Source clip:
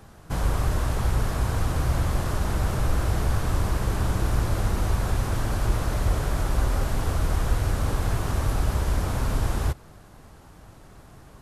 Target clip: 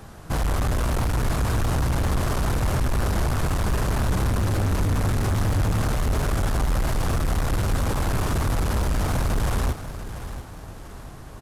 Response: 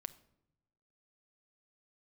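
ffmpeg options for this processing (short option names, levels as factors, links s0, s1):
-filter_complex "[0:a]asettb=1/sr,asplit=3[s0][s1][s2];[s0]atrim=end=4.244[s3];[s1]atrim=start=4.24:end=5.92,asetpts=PTS-STARTPTS,afade=t=in:d=0.004:c=qsin,afade=t=out:st=1.676:d=0.004:c=qsin,equalizer=f=98:t=o:w=0.28:g=11.5[s4];[s2]atrim=start=5.916[s5];[s3][s4]acrossfade=d=0.004:c1=hsin:c2=qsin[s6];[s6][s5]acrossfade=d=0.004:c1=qsin:c2=hsin,asoftclip=type=hard:threshold=0.0501,asplit=2[s7][s8];[s8]aecho=0:1:691|1382|2073|2764:0.251|0.103|0.0422|0.0173[s9];[s7][s9]amix=inputs=2:normalize=0,volume=2"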